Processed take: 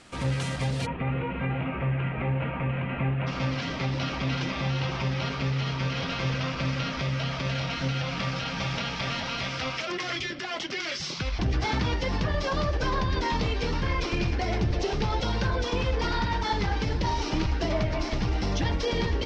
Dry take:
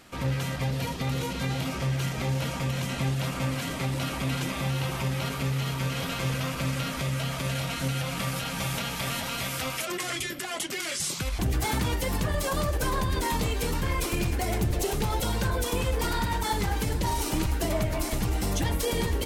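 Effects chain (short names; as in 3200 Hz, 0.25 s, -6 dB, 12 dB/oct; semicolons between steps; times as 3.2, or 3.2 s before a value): elliptic low-pass 9600 Hz, stop band 60 dB, from 0.85 s 2600 Hz, from 3.26 s 5500 Hz; gain +1.5 dB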